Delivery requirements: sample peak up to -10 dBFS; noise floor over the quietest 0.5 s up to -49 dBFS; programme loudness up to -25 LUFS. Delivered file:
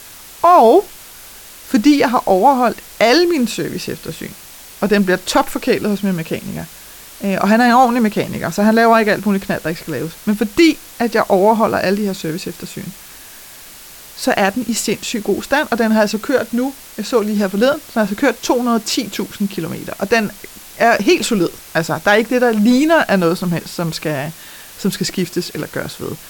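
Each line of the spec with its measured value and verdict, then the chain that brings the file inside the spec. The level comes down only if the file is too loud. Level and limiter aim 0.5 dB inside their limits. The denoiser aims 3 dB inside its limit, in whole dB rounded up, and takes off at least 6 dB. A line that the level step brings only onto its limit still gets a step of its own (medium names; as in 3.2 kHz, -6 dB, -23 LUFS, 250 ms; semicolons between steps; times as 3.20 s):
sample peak -1.0 dBFS: fail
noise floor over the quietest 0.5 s -38 dBFS: fail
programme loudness -15.5 LUFS: fail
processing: noise reduction 6 dB, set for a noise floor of -38 dBFS; trim -10 dB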